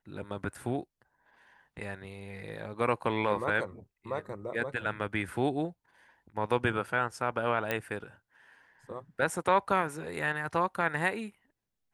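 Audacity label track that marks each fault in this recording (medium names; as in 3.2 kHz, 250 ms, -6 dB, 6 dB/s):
7.710000	7.710000	pop -16 dBFS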